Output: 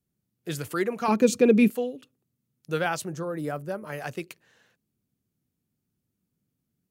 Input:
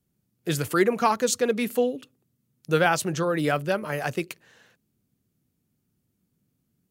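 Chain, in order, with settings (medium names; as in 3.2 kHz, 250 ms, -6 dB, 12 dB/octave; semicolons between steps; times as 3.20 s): 1.08–1.70 s: small resonant body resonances 200/310/2400 Hz, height 16 dB, ringing for 25 ms; 3.06–3.87 s: peaking EQ 3 kHz -13 dB 1.6 oct; trim -6 dB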